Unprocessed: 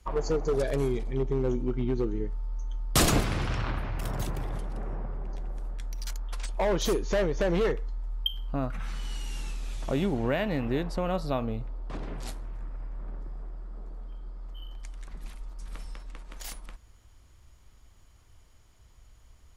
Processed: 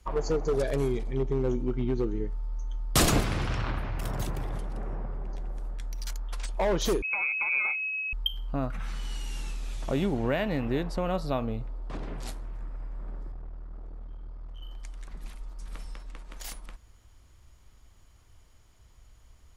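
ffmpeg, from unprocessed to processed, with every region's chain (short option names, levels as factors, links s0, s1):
-filter_complex "[0:a]asettb=1/sr,asplit=3[s0][s1][s2];[s0]atrim=end=7.024[s3];[s1]atrim=start=7.02:end=8.13,asetpts=PTS-STARTPTS,afade=t=in:d=0.004:c=qsin,afade=t=out:st=1.106:d=0.004:c=qsin,adynamicsmooth=sensitivity=1.5:basefreq=690,asuperstop=centerf=690:order=4:qfactor=0.81,lowpass=f=2200:t=q:w=0.5098,lowpass=f=2200:t=q:w=0.6013,lowpass=f=2200:t=q:w=0.9,lowpass=f=2200:t=q:w=2.563,afreqshift=-2600[s4];[s2]atrim=start=8.126[s5];[s3][s4]acrossfade=d=0.004:c1=hsin:c2=qsin[s6];[s6][s5]acrossfade=d=0.004:c1=qsin:c2=hsin,asettb=1/sr,asplit=3[s7][s8][s9];[s7]atrim=end=13.324[s10];[s8]atrim=start=13.32:end=14.63,asetpts=PTS-STARTPTS,afade=t=in:d=0.004:c=qsin,afade=t=out:st=1.306:d=0.004:c=qsin,lowpass=f=3200:p=1,aeval=exprs='clip(val(0),-1,0.01)':c=same[s11];[s9]atrim=start=14.626[s12];[s10][s11]acrossfade=d=0.004:c1=hsin:c2=qsin[s13];[s13][s12]acrossfade=d=0.004:c1=qsin:c2=hsin"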